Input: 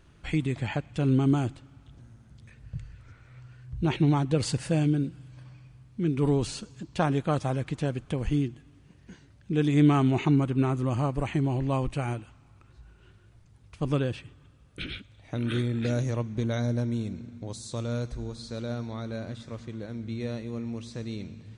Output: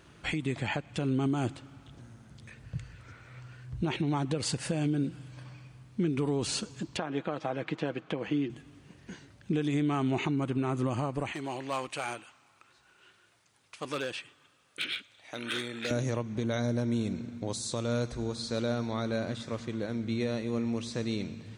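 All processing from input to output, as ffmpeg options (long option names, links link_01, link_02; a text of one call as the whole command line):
ffmpeg -i in.wav -filter_complex "[0:a]asettb=1/sr,asplit=3[link_01][link_02][link_03];[link_01]atrim=end=6.974[link_04];[link_02]atrim=start=6.97:end=8.5,asetpts=PTS-STARTPTS,afade=type=in:duration=0.004:curve=qsin,afade=type=out:start_time=1.526:duration=0.004:curve=qsin,highpass=230,lowpass=3300,aecho=1:1:6.2:0.35,atrim=end_sample=67473[link_05];[link_03]atrim=start=8.496[link_06];[link_04][link_05]acrossfade=duration=0.004:curve1=hsin:curve2=qsin[link_07];[link_07][link_06]acrossfade=duration=0.004:curve1=qsin:curve2=hsin,asettb=1/sr,asplit=3[link_08][link_09][link_10];[link_08]atrim=end=11.324[link_11];[link_09]atrim=start=11.32:end=15.91,asetpts=PTS-STARTPTS,afade=type=in:duration=0.004:curve=qsin,afade=type=out:start_time=4.586:duration=0.004:curve=qsin,highpass=frequency=1200:poles=1,asoftclip=type=hard:threshold=-32dB[link_12];[link_10]atrim=start=15.906[link_13];[link_11][link_12]acrossfade=duration=0.004:curve1=hsin:curve2=qsin[link_14];[link_14][link_13]acrossfade=duration=0.004:curve1=qsin:curve2=hsin,highpass=frequency=210:poles=1,acompressor=threshold=-28dB:ratio=6,alimiter=level_in=2dB:limit=-24dB:level=0:latency=1:release=256,volume=-2dB,volume=6dB" out.wav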